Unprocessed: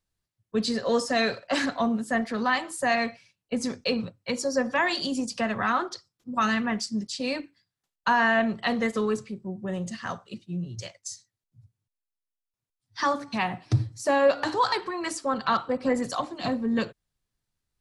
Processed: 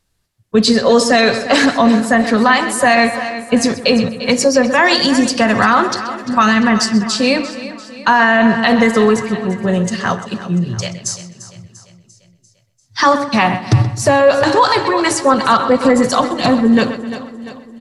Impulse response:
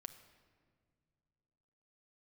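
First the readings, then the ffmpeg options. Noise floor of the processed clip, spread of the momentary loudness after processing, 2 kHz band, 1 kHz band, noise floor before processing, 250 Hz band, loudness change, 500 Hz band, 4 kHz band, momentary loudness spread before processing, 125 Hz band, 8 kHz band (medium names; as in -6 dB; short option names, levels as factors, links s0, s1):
-57 dBFS, 11 LU, +13.0 dB, +13.5 dB, under -85 dBFS, +15.0 dB, +14.0 dB, +14.0 dB, +14.5 dB, 12 LU, +13.5 dB, +15.5 dB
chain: -filter_complex "[0:a]asplit=2[s0][s1];[s1]aecho=0:1:345|690|1035|1380|1725:0.178|0.0942|0.05|0.0265|0.014[s2];[s0][s2]amix=inputs=2:normalize=0,aresample=32000,aresample=44100,asplit=2[s3][s4];[s4]adelay=128,lowpass=f=4400:p=1,volume=0.211,asplit=2[s5][s6];[s6]adelay=128,lowpass=f=4400:p=1,volume=0.42,asplit=2[s7][s8];[s8]adelay=128,lowpass=f=4400:p=1,volume=0.42,asplit=2[s9][s10];[s10]adelay=128,lowpass=f=4400:p=1,volume=0.42[s11];[s5][s7][s9][s11]amix=inputs=4:normalize=0[s12];[s3][s12]amix=inputs=2:normalize=0,alimiter=level_in=6.68:limit=0.891:release=50:level=0:latency=1,volume=0.891"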